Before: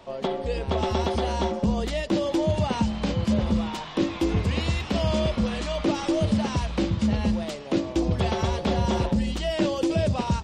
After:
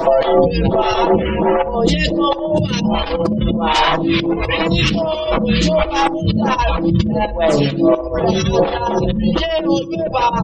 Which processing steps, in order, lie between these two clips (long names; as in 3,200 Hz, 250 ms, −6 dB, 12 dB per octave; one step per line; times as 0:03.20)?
0:01.09–0:01.71: variable-slope delta modulation 16 kbit/s
gate on every frequency bin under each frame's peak −30 dB strong
comb filter 6.1 ms, depth 94%
hum removal 63.75 Hz, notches 4
compressor whose output falls as the input rises −34 dBFS, ratio −1
delay with a low-pass on its return 63 ms, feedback 51%, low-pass 780 Hz, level −12 dB
boost into a limiter +22.5 dB
phaser with staggered stages 1.4 Hz
level −1 dB